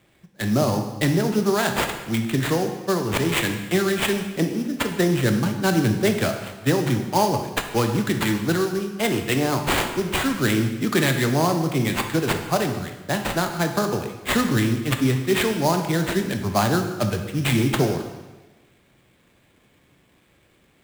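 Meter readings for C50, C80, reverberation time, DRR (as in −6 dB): 7.0 dB, 9.0 dB, 1.2 s, 5.0 dB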